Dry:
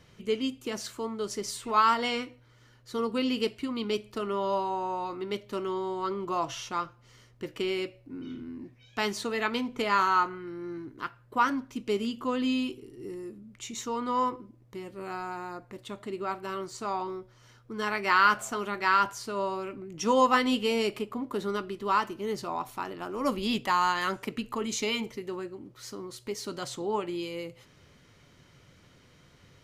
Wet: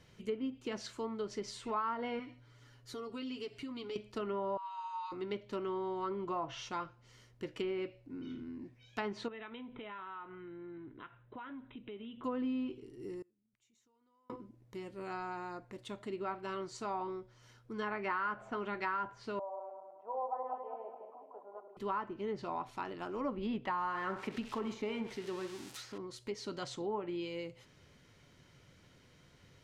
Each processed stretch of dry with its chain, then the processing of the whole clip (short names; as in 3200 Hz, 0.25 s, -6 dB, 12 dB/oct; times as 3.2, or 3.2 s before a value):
2.19–3.96 comb 7.1 ms, depth 74% + compressor 3:1, threshold -38 dBFS
4.57–5.12 rippled Chebyshev high-pass 870 Hz, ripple 6 dB + doubler 49 ms -11 dB
9.28–12.24 compressor 4:1, threshold -41 dBFS + brick-wall FIR low-pass 4000 Hz
13.22–14.3 compressor 12:1, threshold -35 dBFS + flipped gate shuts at -42 dBFS, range -30 dB
19.39–21.77 regenerating reverse delay 0.104 s, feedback 65%, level -4.5 dB + Butterworth band-pass 720 Hz, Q 2.6 + air absorption 300 m
23.78–25.98 switching spikes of -26 dBFS + narrowing echo 65 ms, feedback 49%, band-pass 790 Hz, level -8 dB
whole clip: notch 1200 Hz, Q 15; treble ducked by the level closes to 1500 Hz, closed at -26 dBFS; compressor 5:1, threshold -28 dBFS; gain -4.5 dB